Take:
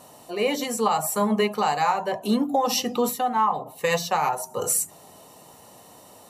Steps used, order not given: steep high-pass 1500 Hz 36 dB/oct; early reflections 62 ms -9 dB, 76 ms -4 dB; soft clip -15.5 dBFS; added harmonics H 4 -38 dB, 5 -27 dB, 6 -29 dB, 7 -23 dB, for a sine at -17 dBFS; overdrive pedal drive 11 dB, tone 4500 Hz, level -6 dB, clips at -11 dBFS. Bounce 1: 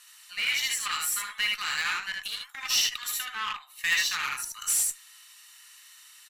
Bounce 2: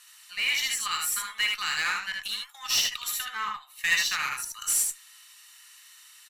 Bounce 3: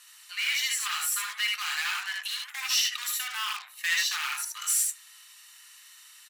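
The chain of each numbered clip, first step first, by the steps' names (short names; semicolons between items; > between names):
early reflections > soft clip > steep high-pass > overdrive pedal > added harmonics; steep high-pass > overdrive pedal > soft clip > added harmonics > early reflections; overdrive pedal > early reflections > added harmonics > steep high-pass > soft clip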